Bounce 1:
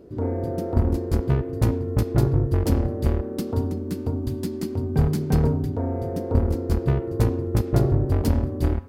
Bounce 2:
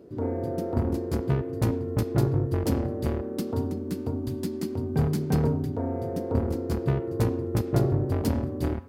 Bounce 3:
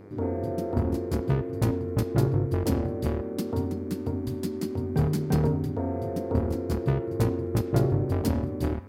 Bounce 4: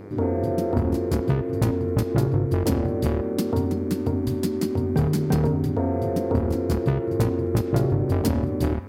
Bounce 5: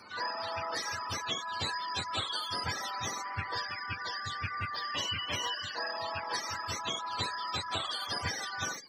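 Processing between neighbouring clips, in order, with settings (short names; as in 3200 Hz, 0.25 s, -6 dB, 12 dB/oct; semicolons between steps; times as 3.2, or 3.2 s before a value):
HPF 100 Hz; gain -2 dB
buzz 100 Hz, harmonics 24, -51 dBFS -6 dB/oct
compressor 2.5:1, threshold -26 dBFS, peak gain reduction 6.5 dB; gain +7 dB
spectrum mirrored in octaves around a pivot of 670 Hz; reverb removal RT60 0.51 s; gain -7 dB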